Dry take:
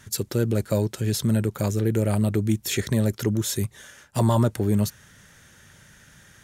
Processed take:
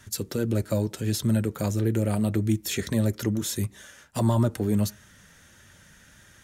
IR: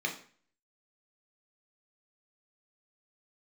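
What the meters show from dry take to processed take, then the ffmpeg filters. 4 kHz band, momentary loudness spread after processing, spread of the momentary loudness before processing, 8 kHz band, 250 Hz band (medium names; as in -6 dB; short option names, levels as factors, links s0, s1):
-2.5 dB, 6 LU, 5 LU, -2.5 dB, -1.5 dB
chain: -filter_complex "[0:a]asplit=2[s0][s1];[1:a]atrim=start_sample=2205,lowpass=2000[s2];[s1][s2]afir=irnorm=-1:irlink=0,volume=0.0794[s3];[s0][s3]amix=inputs=2:normalize=0,acrossover=split=310[s4][s5];[s5]acompressor=threshold=0.0631:ratio=6[s6];[s4][s6]amix=inputs=2:normalize=0,flanger=delay=2.9:depth=1.6:regen=-56:speed=1.6:shape=triangular,volume=1.33"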